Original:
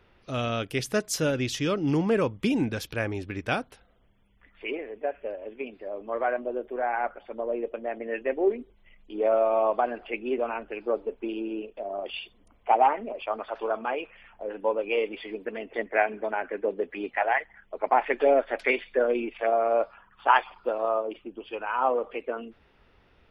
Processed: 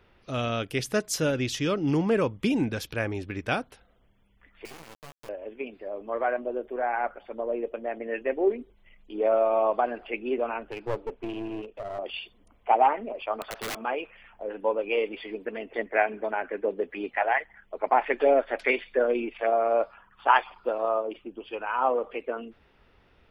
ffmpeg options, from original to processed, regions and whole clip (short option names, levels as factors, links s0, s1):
-filter_complex "[0:a]asettb=1/sr,asplit=3[s0][s1][s2];[s0]atrim=end=4.654[s3];[s1]atrim=start=4.65:end=5.29,asetpts=PTS-STARTPTS,afade=t=in:d=0.004:c=qsin,afade=t=out:st=0.636:d=0.004:c=qsin,acompressor=threshold=0.00708:ratio=5:attack=3.2:release=140:knee=1:detection=peak,acrusher=bits=4:dc=4:mix=0:aa=0.000001,asplit=2[s4][s5];[s5]adelay=13,volume=0.501[s6];[s4][s6]amix=inputs=2:normalize=0,atrim=end_sample=28224[s7];[s2]atrim=start=5.286[s8];[s3][s7]acrossfade=d=0.004:c1=hsin:c2=qsin[s9];[s9][s8]acrossfade=d=0.004:c1=qsin:c2=hsin,asettb=1/sr,asplit=3[s10][s11][s12];[s10]atrim=end=10.714[s13];[s11]atrim=start=10.71:end=11.99,asetpts=PTS-STARTPTS,afade=t=in:d=0.004:c=qsin,afade=t=out:st=1.276:d=0.004:c=qsin,lowpass=4600,aeval=exprs='clip(val(0),-1,0.0168)':c=same[s14];[s12]atrim=start=11.986[s15];[s13][s14]acrossfade=d=0.004:c1=hsin:c2=qsin[s16];[s16][s15]acrossfade=d=0.004:c1=qsin:c2=hsin,asettb=1/sr,asplit=3[s17][s18][s19];[s17]atrim=end=13.414[s20];[s18]atrim=start=13.41:end=13.84,asetpts=PTS-STARTPTS,afade=t=in:d=0.004:c=qsin,afade=t=out:st=0.426:d=0.004:c=qsin,highshelf=f=5000:g=7.5,acompressor=threshold=0.0224:ratio=1.5:attack=3.2:release=140:knee=1:detection=peak,aeval=exprs='(mod(23.7*val(0)+1,2)-1)/23.7':c=same[s21];[s19]atrim=start=13.836[s22];[s20][s21]acrossfade=d=0.004:c1=hsin:c2=qsin[s23];[s23][s22]acrossfade=d=0.004:c1=qsin:c2=hsin"